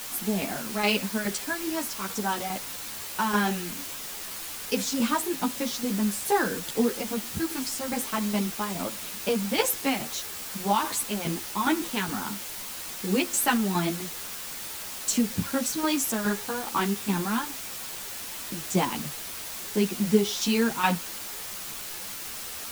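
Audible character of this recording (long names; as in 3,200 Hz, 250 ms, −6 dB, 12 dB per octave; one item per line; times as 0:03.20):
tremolo saw down 2.4 Hz, depth 65%
a quantiser's noise floor 6 bits, dither triangular
a shimmering, thickened sound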